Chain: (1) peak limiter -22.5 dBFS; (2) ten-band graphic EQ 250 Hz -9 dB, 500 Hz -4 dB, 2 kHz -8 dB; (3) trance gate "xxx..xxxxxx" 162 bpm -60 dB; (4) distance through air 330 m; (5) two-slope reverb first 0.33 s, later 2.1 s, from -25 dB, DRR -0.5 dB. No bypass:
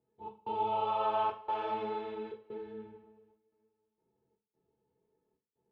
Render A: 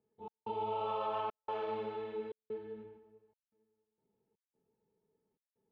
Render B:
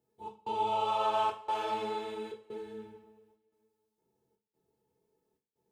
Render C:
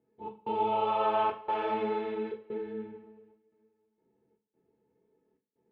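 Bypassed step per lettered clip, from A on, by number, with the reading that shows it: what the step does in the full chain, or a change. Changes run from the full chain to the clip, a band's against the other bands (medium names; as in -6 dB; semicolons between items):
5, 125 Hz band +3.0 dB; 4, 4 kHz band +6.0 dB; 2, momentary loudness spread change -1 LU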